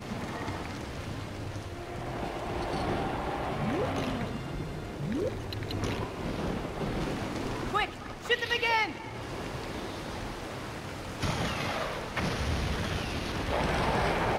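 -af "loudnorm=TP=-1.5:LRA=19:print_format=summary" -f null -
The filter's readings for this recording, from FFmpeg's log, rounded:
Input Integrated:    -32.4 LUFS
Input True Peak:     -13.2 dBTP
Input LRA:             4.5 LU
Input Threshold:     -42.4 LUFS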